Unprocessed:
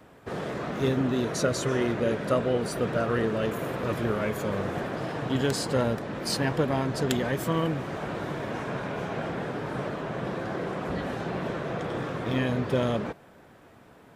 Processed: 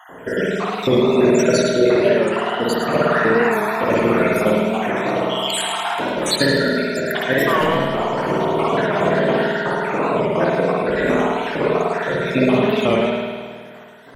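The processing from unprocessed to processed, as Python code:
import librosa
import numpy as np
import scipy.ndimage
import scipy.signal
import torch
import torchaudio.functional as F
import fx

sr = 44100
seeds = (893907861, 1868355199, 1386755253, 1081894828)

p1 = fx.spec_dropout(x, sr, seeds[0], share_pct=74)
p2 = scipy.signal.sosfilt(scipy.signal.butter(2, 44.0, 'highpass', fs=sr, output='sos'), p1)
p3 = fx.peak_eq(p2, sr, hz=80.0, db=-14.5, octaves=2.0)
p4 = fx.rider(p3, sr, range_db=10, speed_s=2.0)
p5 = p3 + F.gain(torch.from_numpy(p4), 2.5).numpy()
p6 = fx.clip_hard(p5, sr, threshold_db=-22.0, at=(7.35, 8.61))
p7 = fx.echo_feedback(p6, sr, ms=107, feedback_pct=42, wet_db=-7)
p8 = fx.rev_spring(p7, sr, rt60_s=1.8, pass_ms=(51,), chirp_ms=30, drr_db=-5.0)
p9 = fx.record_warp(p8, sr, rpm=45.0, depth_cents=100.0)
y = F.gain(torch.from_numpy(p9), 5.0).numpy()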